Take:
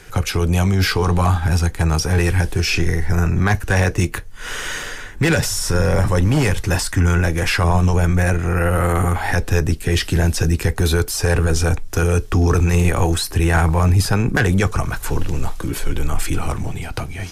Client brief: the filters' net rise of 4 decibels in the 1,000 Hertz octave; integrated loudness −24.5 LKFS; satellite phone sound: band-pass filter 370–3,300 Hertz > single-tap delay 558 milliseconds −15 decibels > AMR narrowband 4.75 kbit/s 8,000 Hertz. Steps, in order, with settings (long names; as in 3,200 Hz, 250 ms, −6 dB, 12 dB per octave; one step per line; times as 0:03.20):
band-pass filter 370–3,300 Hz
parametric band 1,000 Hz +5.5 dB
single-tap delay 558 ms −15 dB
level +1.5 dB
AMR narrowband 4.75 kbit/s 8,000 Hz